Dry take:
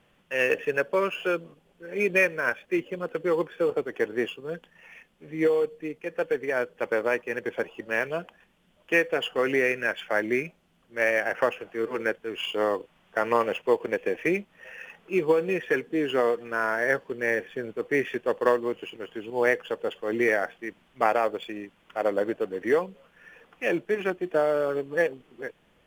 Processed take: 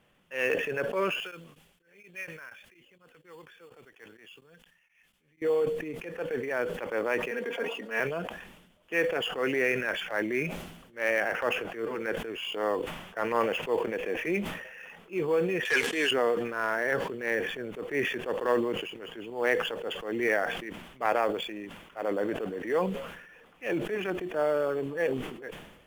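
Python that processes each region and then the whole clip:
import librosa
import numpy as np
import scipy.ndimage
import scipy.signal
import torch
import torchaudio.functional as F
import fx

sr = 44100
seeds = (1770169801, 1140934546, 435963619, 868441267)

y = fx.chain(x, sr, fx.tone_stack(knobs='5-5-5'),
    fx.tremolo_abs(hz=4.2), at=(1.2, 5.42))
y = fx.chain(y, sr, fx.highpass(hz=210.0, slope=24),
    fx.comb(ms=4.3, depth=0.84), at=(7.31, 8.0))
y = fx.chain(y, sr, fx.weighting(curve='ITU-R 468'),
    fx.leveller(passes=2), at=(15.65, 16.11))
y = fx.high_shelf(y, sr, hz=12000.0, db=5.0)
y = fx.transient(y, sr, attack_db=-8, sustain_db=2)
y = fx.sustainer(y, sr, db_per_s=58.0)
y = F.gain(torch.from_numpy(y), -2.5).numpy()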